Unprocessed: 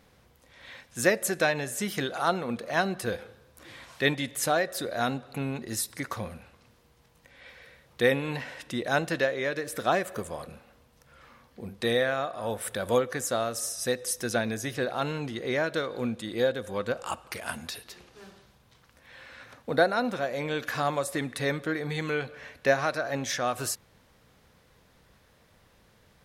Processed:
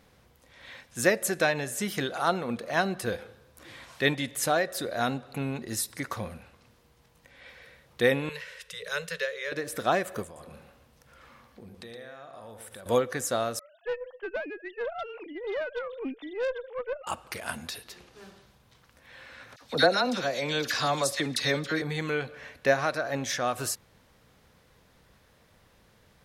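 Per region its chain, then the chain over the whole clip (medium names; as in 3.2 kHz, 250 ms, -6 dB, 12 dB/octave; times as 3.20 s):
8.29–9.52 s: Chebyshev band-stop 180–420 Hz, order 5 + static phaser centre 310 Hz, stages 4
10.24–12.86 s: compression, threshold -43 dBFS + delay 117 ms -7.5 dB
13.59–17.07 s: formants replaced by sine waves + valve stage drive 26 dB, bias 0.35
19.56–21.82 s: peaking EQ 5 kHz +13 dB 1.3 oct + phase dispersion lows, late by 52 ms, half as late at 1.4 kHz
whole clip: none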